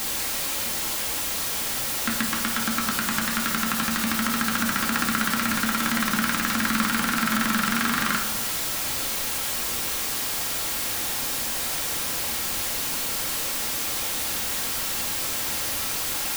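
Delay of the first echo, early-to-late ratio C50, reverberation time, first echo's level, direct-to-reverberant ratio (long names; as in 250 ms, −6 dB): no echo audible, 6.5 dB, 1.1 s, no echo audible, 0.0 dB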